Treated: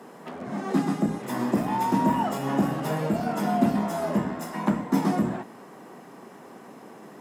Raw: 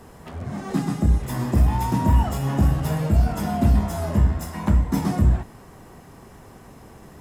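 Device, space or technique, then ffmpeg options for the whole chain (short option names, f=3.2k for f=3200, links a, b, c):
behind a face mask: -af "highpass=f=200:w=0.5412,highpass=f=200:w=1.3066,highshelf=f=3.4k:g=-7.5,volume=2.5dB"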